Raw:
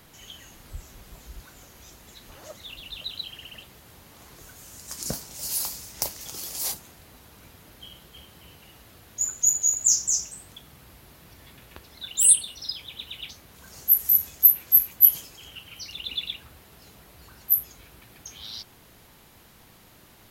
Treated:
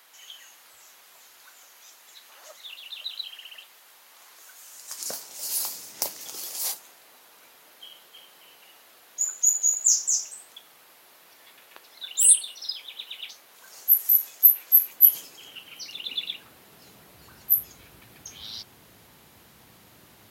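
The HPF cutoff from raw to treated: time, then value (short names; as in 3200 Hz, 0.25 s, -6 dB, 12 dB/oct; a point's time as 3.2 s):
4.64 s 850 Hz
6.04 s 230 Hz
6.77 s 550 Hz
14.63 s 550 Hz
15.27 s 240 Hz
16.24 s 240 Hz
17.53 s 77 Hz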